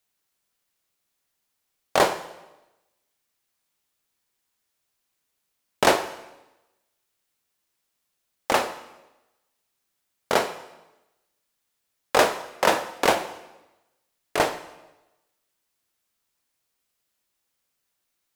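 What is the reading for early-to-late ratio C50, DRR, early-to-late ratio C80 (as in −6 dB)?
12.5 dB, 10.5 dB, 14.5 dB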